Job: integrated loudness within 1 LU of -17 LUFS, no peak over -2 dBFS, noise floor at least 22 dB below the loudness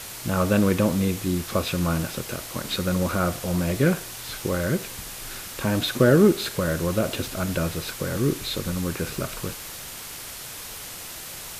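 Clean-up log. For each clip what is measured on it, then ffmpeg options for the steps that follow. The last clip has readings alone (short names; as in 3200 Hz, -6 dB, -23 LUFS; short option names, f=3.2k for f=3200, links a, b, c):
noise floor -38 dBFS; noise floor target -48 dBFS; loudness -25.5 LUFS; peak -5.5 dBFS; loudness target -17.0 LUFS
-> -af "afftdn=nr=10:nf=-38"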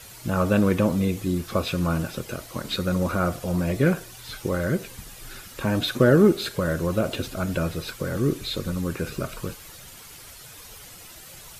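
noise floor -44 dBFS; noise floor target -47 dBFS
-> -af "afftdn=nr=6:nf=-44"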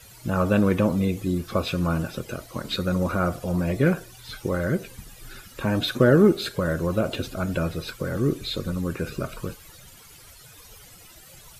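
noise floor -48 dBFS; loudness -25.0 LUFS; peak -6.0 dBFS; loudness target -17.0 LUFS
-> -af "volume=8dB,alimiter=limit=-2dB:level=0:latency=1"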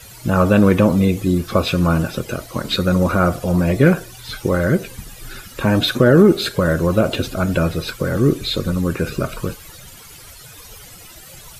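loudness -17.5 LUFS; peak -2.0 dBFS; noise floor -40 dBFS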